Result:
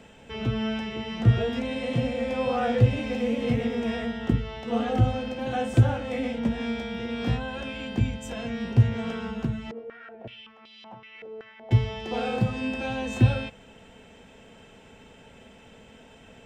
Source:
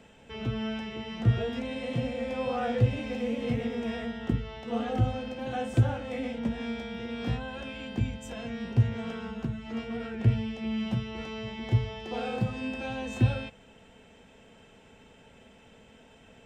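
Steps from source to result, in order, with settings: 9.71–11.71 stepped band-pass 5.3 Hz 470–4100 Hz; gain +4.5 dB

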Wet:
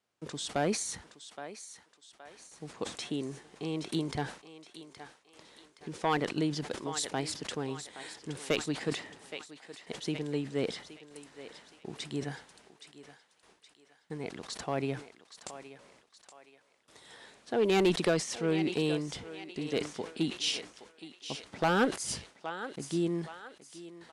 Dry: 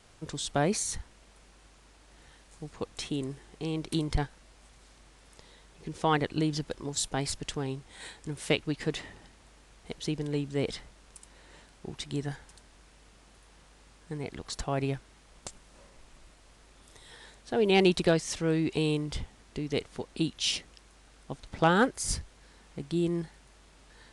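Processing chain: HPF 170 Hz 12 dB/oct; gate with hold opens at -47 dBFS; high shelf 6000 Hz -4.5 dB; on a send: thinning echo 0.82 s, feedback 46%, high-pass 540 Hz, level -11.5 dB; on the sum: one-sided clip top -20 dBFS; downsampling 32000 Hz; sustainer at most 140 dB/s; gain -1 dB

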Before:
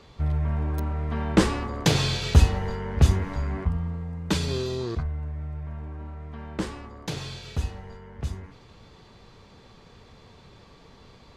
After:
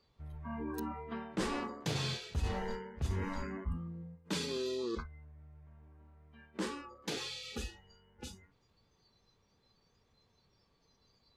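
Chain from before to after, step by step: spectral noise reduction 21 dB; reverse; compressor 5:1, threshold -33 dBFS, peak gain reduction 20.5 dB; reverse; gain -1 dB

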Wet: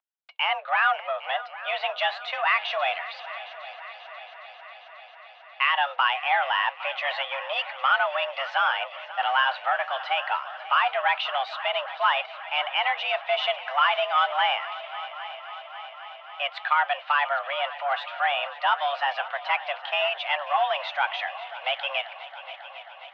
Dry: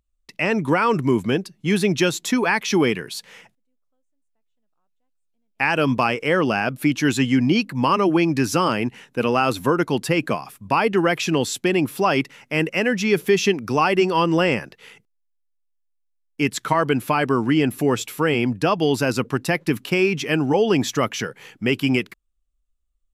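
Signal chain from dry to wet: sample leveller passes 1; flange 0.25 Hz, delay 2.2 ms, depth 6.6 ms, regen -81%; multi-head echo 0.27 s, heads second and third, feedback 68%, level -16.5 dB; mistuned SSB +280 Hz 460–3300 Hz

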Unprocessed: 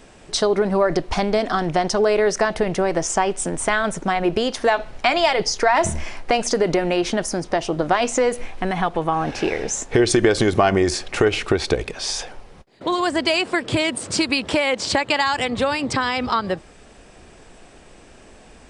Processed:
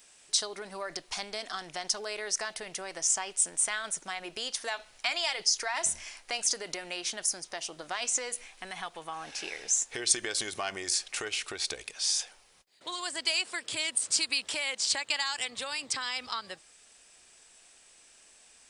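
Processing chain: pre-emphasis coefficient 0.97

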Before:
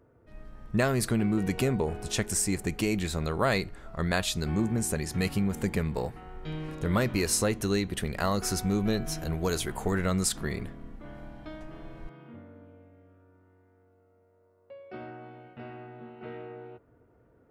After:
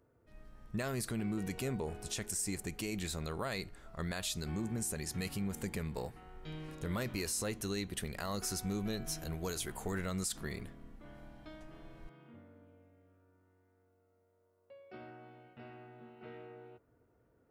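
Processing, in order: high shelf 3500 Hz +8 dB; limiter -18 dBFS, peak gain reduction 9.5 dB; gain -9 dB

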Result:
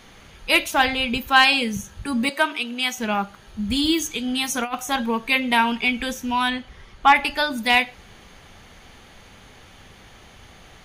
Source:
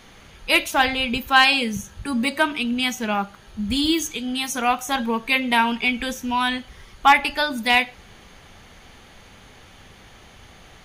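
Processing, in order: 2.29–2.98 HPF 380 Hz 12 dB/oct; 4.13–4.75 negative-ratio compressor -23 dBFS, ratio -0.5; 6.5–7.16 LPF 3900 Hz 6 dB/oct

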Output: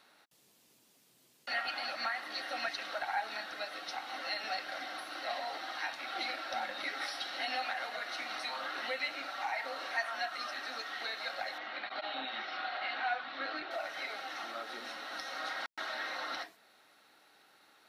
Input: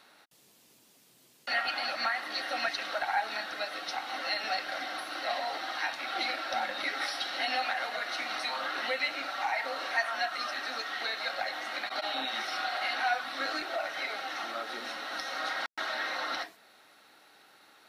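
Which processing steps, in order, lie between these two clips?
11.58–13.71 LPF 4000 Hz 24 dB/oct; gain -5 dB

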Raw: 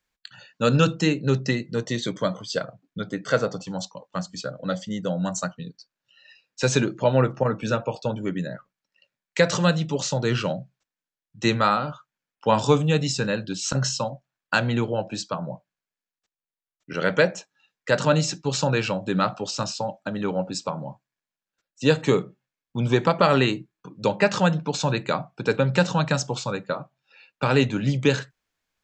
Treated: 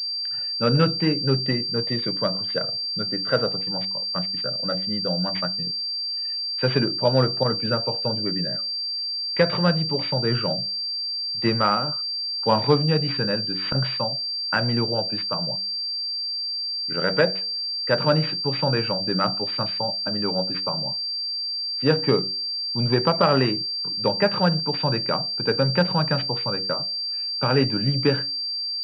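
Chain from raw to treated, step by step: de-hum 94.99 Hz, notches 7; pulse-width modulation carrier 4700 Hz

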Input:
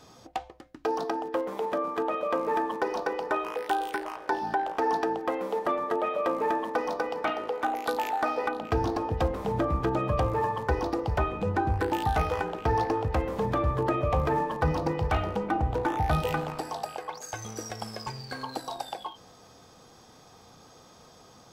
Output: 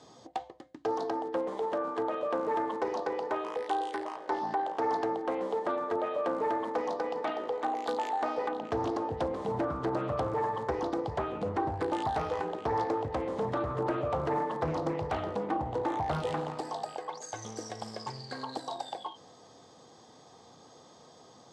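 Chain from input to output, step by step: in parallel at -1 dB: limiter -26 dBFS, peak gain reduction 10 dB; on the sum: speaker cabinet 140–8300 Hz, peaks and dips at 190 Hz -4 dB, 1400 Hz -8 dB, 2500 Hz -9 dB, 5500 Hz -5 dB; Doppler distortion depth 0.34 ms; gain -5.5 dB

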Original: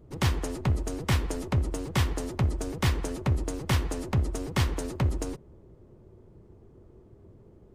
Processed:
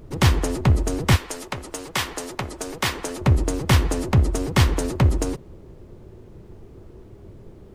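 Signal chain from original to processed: 1.15–3.2 HPF 1300 Hz -> 530 Hz 6 dB/oct; added noise brown -57 dBFS; gain +8.5 dB

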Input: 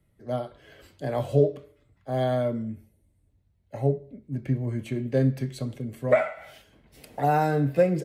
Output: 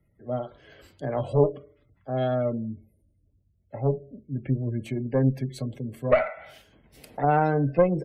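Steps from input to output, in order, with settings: spectral gate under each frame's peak -30 dB strong; added harmonics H 2 -10 dB, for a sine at -7.5 dBFS

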